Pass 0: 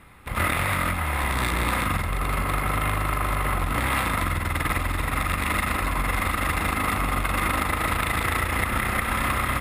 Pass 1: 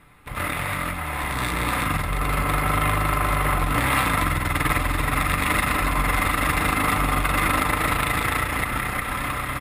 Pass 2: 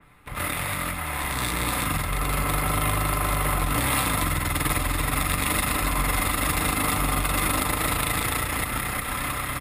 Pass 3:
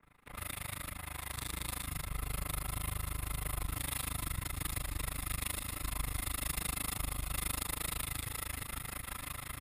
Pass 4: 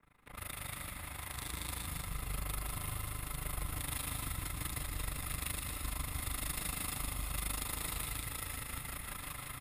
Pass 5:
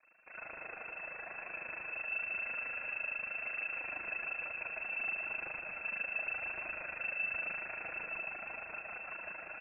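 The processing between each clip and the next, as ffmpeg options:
-af "dynaudnorm=f=320:g=11:m=6.5dB,aecho=1:1:6.8:0.38,volume=-3dB"
-filter_complex "[0:a]acrossover=split=130|1100|2700[a][b][c][d];[c]alimiter=limit=-24dB:level=0:latency=1:release=137[e];[a][b][e][d]amix=inputs=4:normalize=0,adynamicequalizer=threshold=0.00794:dfrequency=3400:dqfactor=0.7:tfrequency=3400:tqfactor=0.7:attack=5:release=100:ratio=0.375:range=3.5:mode=boostabove:tftype=highshelf,volume=-2dB"
-filter_complex "[0:a]acrossover=split=130|3000[a][b][c];[b]acompressor=threshold=-36dB:ratio=3[d];[a][d][c]amix=inputs=3:normalize=0,tremolo=f=26:d=0.974,volume=-7dB"
-af "aecho=1:1:165|330|495|660|825|990:0.501|0.256|0.13|0.0665|0.0339|0.0173,volume=-2.5dB"
-af "flanger=delay=0.9:depth=5.4:regen=57:speed=0.97:shape=triangular,lowpass=f=2.3k:t=q:w=0.5098,lowpass=f=2.3k:t=q:w=0.6013,lowpass=f=2.3k:t=q:w=0.9,lowpass=f=2.3k:t=q:w=2.563,afreqshift=-2700,volume=4.5dB"

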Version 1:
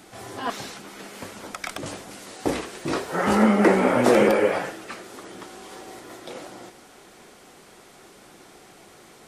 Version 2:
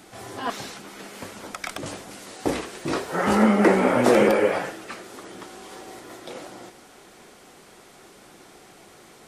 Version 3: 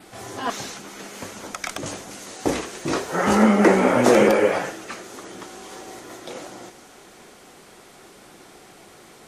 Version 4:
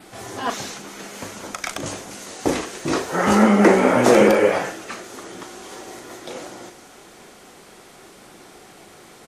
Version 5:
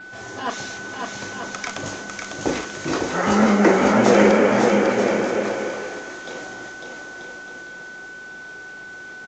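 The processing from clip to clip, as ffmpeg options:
-af anull
-af "adynamicequalizer=threshold=0.00112:dfrequency=6400:dqfactor=4.2:tfrequency=6400:tqfactor=4.2:attack=5:release=100:ratio=0.375:range=3.5:mode=boostabove:tftype=bell,volume=2dB"
-filter_complex "[0:a]asplit=2[a][b];[b]adelay=39,volume=-12dB[c];[a][c]amix=inputs=2:normalize=0,volume=1.5dB"
-filter_complex "[0:a]aeval=exprs='val(0)+0.0178*sin(2*PI*1500*n/s)':c=same,asplit=2[a][b];[b]aecho=0:1:550|935|1204|1393|1525:0.631|0.398|0.251|0.158|0.1[c];[a][c]amix=inputs=2:normalize=0,aresample=16000,aresample=44100,volume=-2dB"

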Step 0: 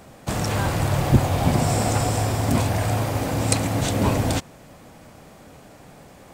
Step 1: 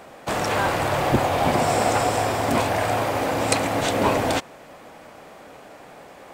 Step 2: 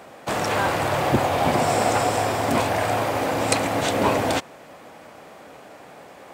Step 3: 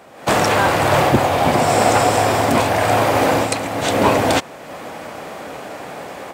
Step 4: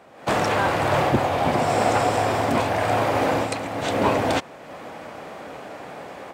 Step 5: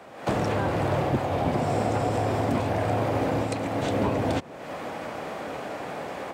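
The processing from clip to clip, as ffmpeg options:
-af "bass=f=250:g=-15,treble=f=4k:g=-8,volume=5.5dB"
-af "highpass=67"
-af "dynaudnorm=f=140:g=3:m=13.5dB,volume=-1dB"
-af "highshelf=f=6.3k:g=-9,volume=-5.5dB"
-filter_complex "[0:a]acrossover=split=180|560[a][b][c];[a]acompressor=threshold=-31dB:ratio=4[d];[b]acompressor=threshold=-31dB:ratio=4[e];[c]acompressor=threshold=-37dB:ratio=4[f];[d][e][f]amix=inputs=3:normalize=0,volume=3.5dB"

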